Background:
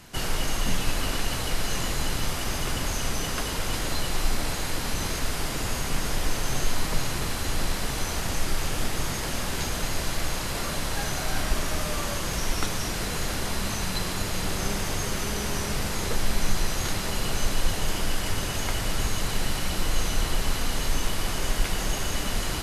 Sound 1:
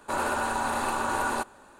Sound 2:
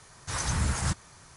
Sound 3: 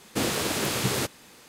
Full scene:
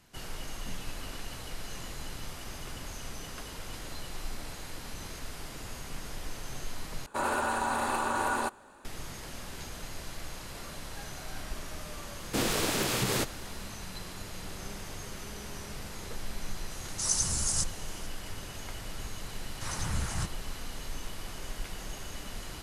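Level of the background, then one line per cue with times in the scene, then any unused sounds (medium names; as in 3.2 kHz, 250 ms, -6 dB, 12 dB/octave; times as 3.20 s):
background -13 dB
7.06 s: replace with 1 -2 dB
12.18 s: add 3 -2 dB + peak limiter -16 dBFS
16.71 s: add 2 -9.5 dB + resonant high shelf 3.9 kHz +14 dB, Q 1.5
19.33 s: add 2 -6 dB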